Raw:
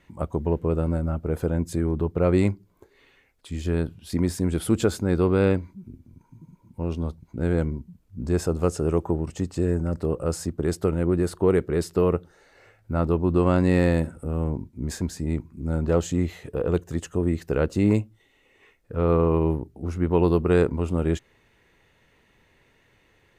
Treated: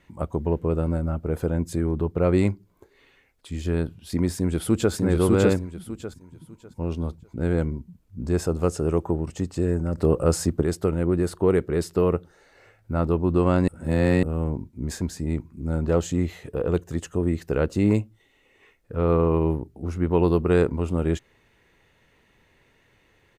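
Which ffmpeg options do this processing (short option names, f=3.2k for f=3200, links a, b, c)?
-filter_complex "[0:a]asplit=2[a][b];[b]afade=t=in:st=4.33:d=0.01,afade=t=out:st=4.93:d=0.01,aecho=0:1:600|1200|1800|2400:0.891251|0.222813|0.0557032|0.0139258[c];[a][c]amix=inputs=2:normalize=0,asplit=5[d][e][f][g][h];[d]atrim=end=9.982[i];[e]atrim=start=9.978:end=10.632,asetpts=PTS-STARTPTS,volume=5.5dB[j];[f]atrim=start=10.628:end=13.682[k];[g]atrim=start=13.678:end=14.232,asetpts=PTS-STARTPTS,areverse[l];[h]atrim=start=14.228[m];[i][j]acrossfade=d=0.004:c1=hsin:c2=hsin[n];[n][k]acrossfade=d=0.004:c1=hsin:c2=hsin[o];[o][l]acrossfade=d=0.004:c1=hsin:c2=hsin[p];[p][m]acrossfade=d=0.004:c1=hsin:c2=hsin"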